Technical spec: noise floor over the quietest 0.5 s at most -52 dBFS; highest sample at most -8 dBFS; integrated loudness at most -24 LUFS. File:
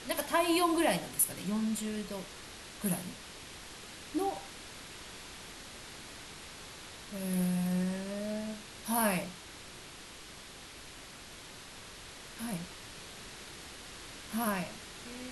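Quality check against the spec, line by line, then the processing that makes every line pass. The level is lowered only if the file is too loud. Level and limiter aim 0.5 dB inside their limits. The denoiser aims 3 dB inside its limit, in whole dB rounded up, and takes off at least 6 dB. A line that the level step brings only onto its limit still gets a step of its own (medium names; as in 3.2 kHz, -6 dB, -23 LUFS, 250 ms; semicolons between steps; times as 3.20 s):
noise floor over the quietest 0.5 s -49 dBFS: fail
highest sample -15.0 dBFS: pass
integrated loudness -35.5 LUFS: pass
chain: noise reduction 6 dB, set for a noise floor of -49 dBFS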